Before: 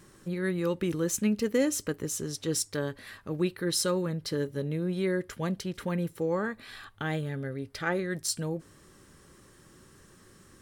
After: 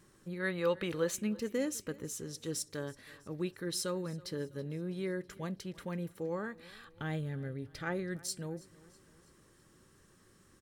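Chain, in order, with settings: 0.40–1.16 s: time-frequency box 430–4800 Hz +9 dB; 6.92–8.17 s: bass shelf 170 Hz +8 dB; feedback delay 326 ms, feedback 52%, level -22 dB; trim -8 dB

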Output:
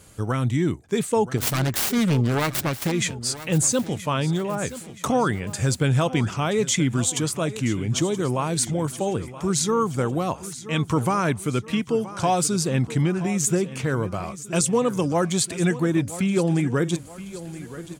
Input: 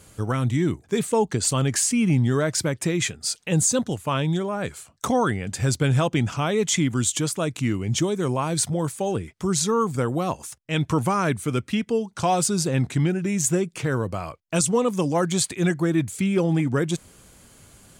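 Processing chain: 1.37–2.92 s: self-modulated delay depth 0.7 ms; on a send: feedback delay 975 ms, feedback 46%, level -15 dB

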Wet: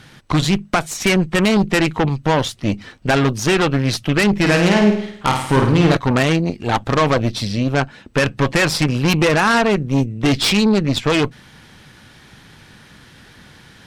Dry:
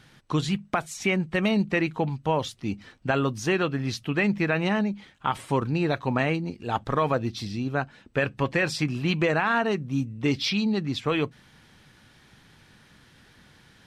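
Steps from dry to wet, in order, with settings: Chebyshev shaper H 5 -17 dB, 8 -15 dB, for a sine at -11 dBFS; 4.37–5.97 s: flutter echo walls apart 9 m, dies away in 0.63 s; trim +6 dB

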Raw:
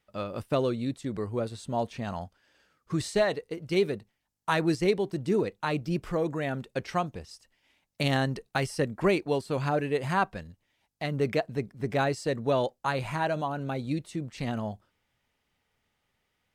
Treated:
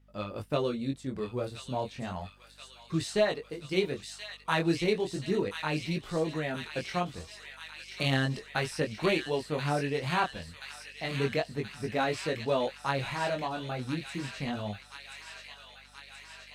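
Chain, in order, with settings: chorus 0.33 Hz, delay 18.5 ms, depth 5.5 ms; hum 50 Hz, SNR 29 dB; dynamic bell 3.1 kHz, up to +4 dB, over -48 dBFS, Q 0.89; feedback echo behind a high-pass 1029 ms, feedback 72%, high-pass 2.2 kHz, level -4.5 dB

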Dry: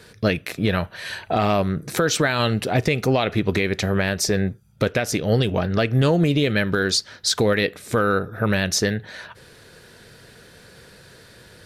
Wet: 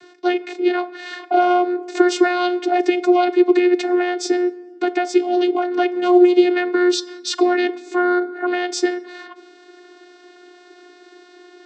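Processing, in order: vocoder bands 16, saw 357 Hz; on a send: reverberation RT60 1.4 s, pre-delay 3 ms, DRR 16 dB; on the sum: trim +4 dB

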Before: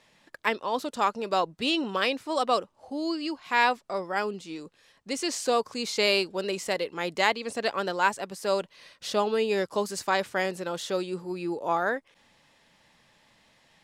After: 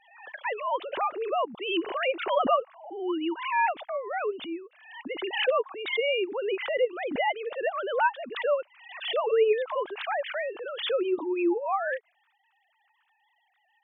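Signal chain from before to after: formants replaced by sine waves; swell ahead of each attack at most 76 dB/s; trim -1 dB

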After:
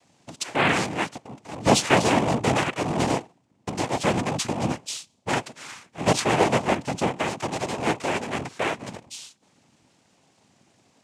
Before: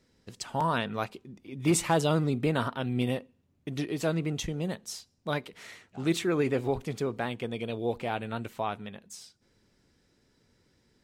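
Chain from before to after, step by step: cycle switcher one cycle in 3, inverted; noise-vocoded speech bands 4; trim +6.5 dB

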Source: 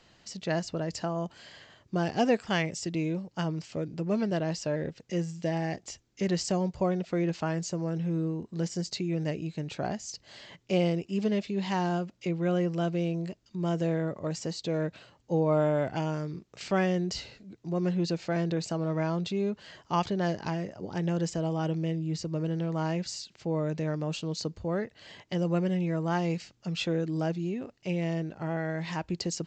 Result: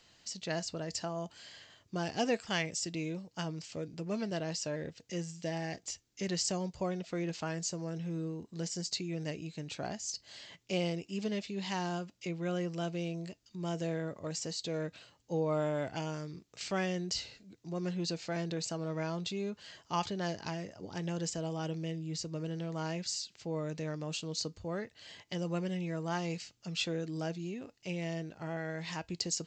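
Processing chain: treble shelf 2.8 kHz +11 dB; feedback comb 95 Hz, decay 0.16 s, harmonics odd, mix 40%; trim -4 dB

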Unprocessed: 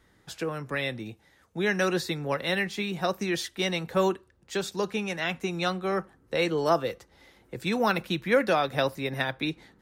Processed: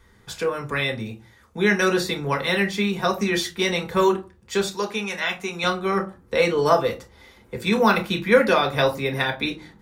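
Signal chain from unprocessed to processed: 4.67–5.64 s: bass shelf 430 Hz -10.5 dB; reverberation RT60 0.30 s, pre-delay 3 ms, DRR 3.5 dB; trim +4 dB

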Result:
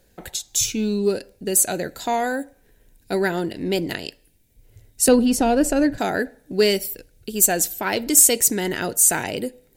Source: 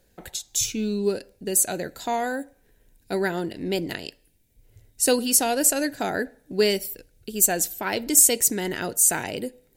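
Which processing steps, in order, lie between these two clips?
5.08–5.98 s: RIAA curve playback; in parallel at -8 dB: saturation -18 dBFS, distortion -10 dB; on the sum: trim +1 dB

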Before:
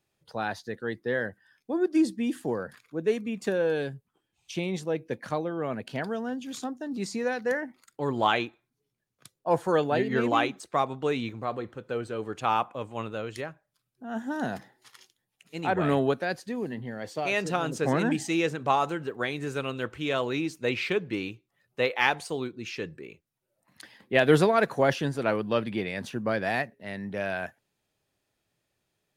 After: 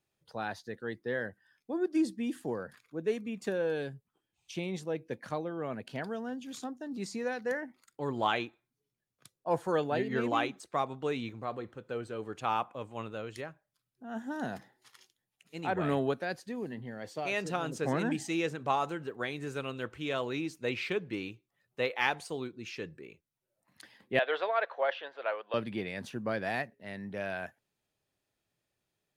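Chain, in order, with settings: 24.19–25.54 s: Chebyshev band-pass 540–3500 Hz, order 3; trim -5.5 dB

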